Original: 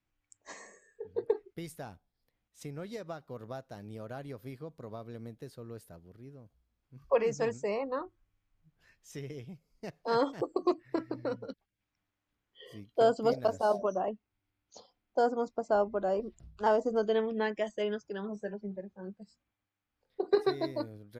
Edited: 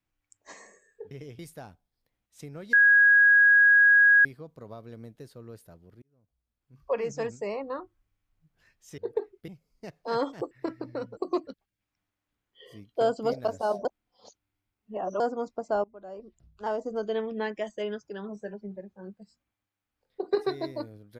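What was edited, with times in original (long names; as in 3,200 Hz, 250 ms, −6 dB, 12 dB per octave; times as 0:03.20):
0:01.11–0:01.61: swap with 0:09.20–0:09.48
0:02.95–0:04.47: beep over 1,650 Hz −14.5 dBFS
0:06.24–0:07.76: fade in equal-power
0:10.51–0:10.81: move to 0:11.47
0:13.85–0:15.20: reverse
0:15.84–0:17.36: fade in, from −20 dB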